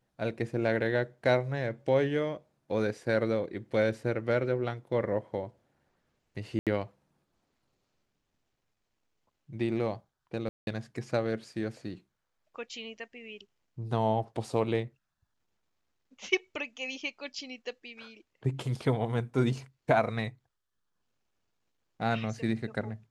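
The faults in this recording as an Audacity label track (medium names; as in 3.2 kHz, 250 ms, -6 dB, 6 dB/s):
6.590000	6.670000	dropout 77 ms
10.490000	10.670000	dropout 181 ms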